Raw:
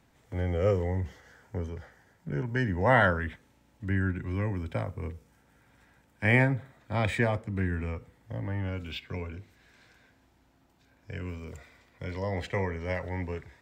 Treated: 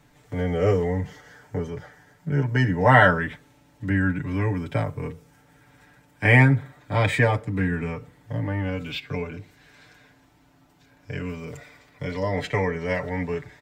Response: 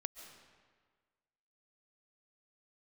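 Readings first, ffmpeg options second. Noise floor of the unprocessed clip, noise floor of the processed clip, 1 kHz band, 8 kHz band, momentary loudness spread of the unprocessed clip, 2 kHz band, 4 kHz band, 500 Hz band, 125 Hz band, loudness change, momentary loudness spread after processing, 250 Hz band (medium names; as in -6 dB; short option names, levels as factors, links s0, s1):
-65 dBFS, -58 dBFS, +7.5 dB, no reading, 18 LU, +7.5 dB, +7.0 dB, +6.0 dB, +7.0 dB, +7.0 dB, 19 LU, +7.0 dB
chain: -af "aecho=1:1:6.8:0.83,volume=1.78"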